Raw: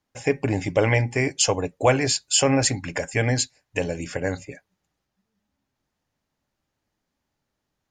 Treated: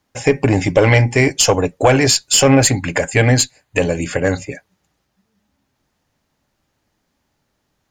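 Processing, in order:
one-sided soft clipper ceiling −10 dBFS
0:02.48–0:04.26: notch filter 5,500 Hz, Q 5
boost into a limiter +11.5 dB
level −1 dB

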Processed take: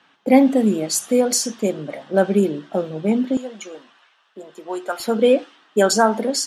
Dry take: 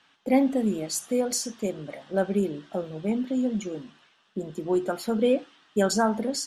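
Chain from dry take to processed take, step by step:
high-pass filter 140 Hz 12 dB per octave, from 0:03.37 750 Hz, from 0:05.00 270 Hz
one half of a high-frequency compander decoder only
level +8.5 dB

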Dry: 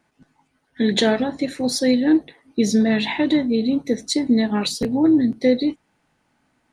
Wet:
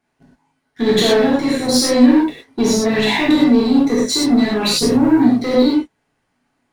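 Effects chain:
in parallel at +3 dB: brickwall limiter −13 dBFS, peak gain reduction 7 dB
on the sum: leveller curve on the samples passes 2
reverb whose tail is shaped and stops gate 140 ms flat, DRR −6.5 dB
level −12.5 dB

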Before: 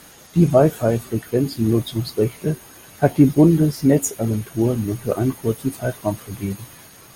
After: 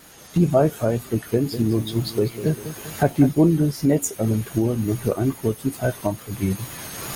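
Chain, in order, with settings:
camcorder AGC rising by 19 dB per second
tape wow and flutter 48 cents
0:01.08–0:03.35: feedback echo at a low word length 198 ms, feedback 55%, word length 6 bits, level −11.5 dB
level −3.5 dB

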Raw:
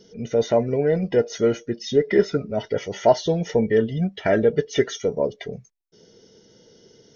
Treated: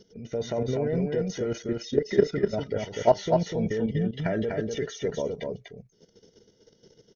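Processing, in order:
output level in coarse steps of 13 dB
low-shelf EQ 130 Hz +6.5 dB
single-tap delay 247 ms −4 dB
level −2 dB

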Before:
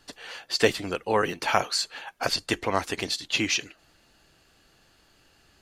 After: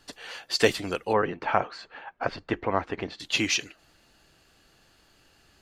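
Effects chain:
0:01.13–0:03.20: low-pass filter 1,700 Hz 12 dB per octave

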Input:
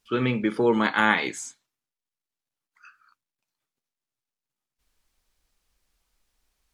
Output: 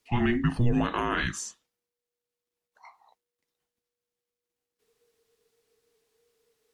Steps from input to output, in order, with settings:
brickwall limiter −14 dBFS, peak gain reduction 10 dB
frequency shifter −480 Hz

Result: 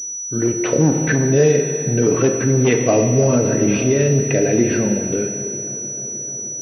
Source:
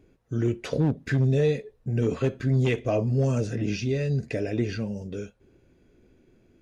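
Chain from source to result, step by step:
automatic gain control gain up to 7.5 dB
four-comb reverb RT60 2.5 s, combs from 25 ms, DRR 6 dB
in parallel at +3 dB: brickwall limiter −12.5 dBFS, peak gain reduction 8 dB
on the sum: high-pass filter 170 Hz 12 dB per octave
on a send: delay with a low-pass on its return 309 ms, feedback 83%, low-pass 1,200 Hz, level −21 dB
on the sum: flanger 0.34 Hz, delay 8.6 ms, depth 3.7 ms, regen −84%
switching amplifier with a slow clock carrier 5,900 Hz
level +2.5 dB

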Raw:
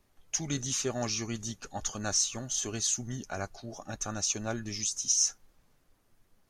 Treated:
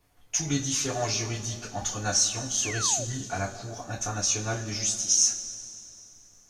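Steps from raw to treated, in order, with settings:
coupled-rooms reverb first 0.21 s, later 2.8 s, from −21 dB, DRR −5 dB
sound drawn into the spectrogram fall, 0:02.62–0:03.05, 500–3,000 Hz −35 dBFS
level −1 dB

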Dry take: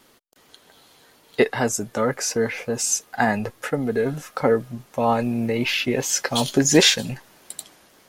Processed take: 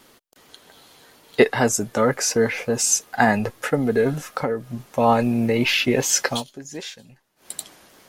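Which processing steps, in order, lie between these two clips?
0:04.19–0:04.89: downward compressor 6 to 1, threshold −24 dBFS, peak gain reduction 10 dB
0:06.28–0:07.52: duck −22.5 dB, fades 0.16 s
level +3 dB

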